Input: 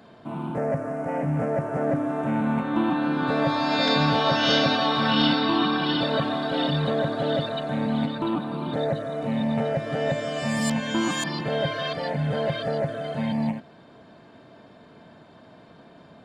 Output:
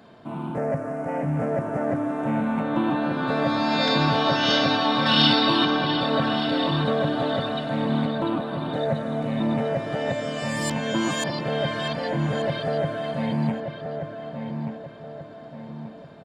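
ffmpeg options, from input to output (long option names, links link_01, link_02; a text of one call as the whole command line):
ffmpeg -i in.wav -filter_complex "[0:a]asettb=1/sr,asplit=3[link_01][link_02][link_03];[link_01]atrim=end=5.064[link_04];[link_02]atrim=start=5.06:end=5.65,asetpts=PTS-STARTPTS,afade=type=in:duration=0.004:curve=qsin,afade=type=out:start_time=0.586:duration=0.004:curve=qsin,highshelf=frequency=2800:gain=10[link_05];[link_03]atrim=start=5.646[link_06];[link_04][link_05]acrossfade=duration=0.004:curve1=hsin:curve2=qsin[link_07];[link_07][link_06]acrossfade=duration=0.004:curve1=qsin:curve2=hsin,asplit=2[link_08][link_09];[link_09]adelay=1182,lowpass=frequency=1700:poles=1,volume=-6dB,asplit=2[link_10][link_11];[link_11]adelay=1182,lowpass=frequency=1700:poles=1,volume=0.47,asplit=2[link_12][link_13];[link_13]adelay=1182,lowpass=frequency=1700:poles=1,volume=0.47,asplit=2[link_14][link_15];[link_15]adelay=1182,lowpass=frequency=1700:poles=1,volume=0.47,asplit=2[link_16][link_17];[link_17]adelay=1182,lowpass=frequency=1700:poles=1,volume=0.47,asplit=2[link_18][link_19];[link_19]adelay=1182,lowpass=frequency=1700:poles=1,volume=0.47[link_20];[link_10][link_12][link_14][link_16][link_18][link_20]amix=inputs=6:normalize=0[link_21];[link_08][link_21]amix=inputs=2:normalize=0" out.wav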